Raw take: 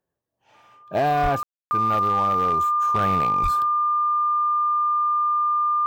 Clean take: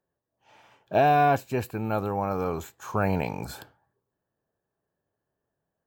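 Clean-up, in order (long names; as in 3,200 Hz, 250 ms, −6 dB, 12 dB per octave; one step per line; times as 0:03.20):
clipped peaks rebuilt −16 dBFS
notch filter 1,200 Hz, Q 30
high-pass at the plosives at 0:01.22/0:03.42
ambience match 0:01.43–0:01.71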